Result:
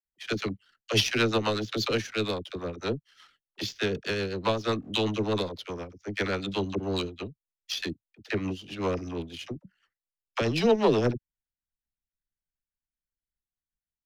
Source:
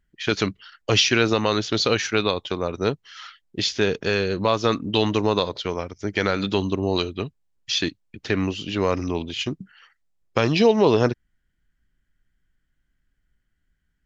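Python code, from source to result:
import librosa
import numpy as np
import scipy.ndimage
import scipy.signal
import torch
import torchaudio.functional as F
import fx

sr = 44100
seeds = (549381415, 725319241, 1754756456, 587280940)

y = fx.power_curve(x, sr, exponent=1.4)
y = fx.rotary(y, sr, hz=8.0)
y = fx.dispersion(y, sr, late='lows', ms=49.0, hz=450.0)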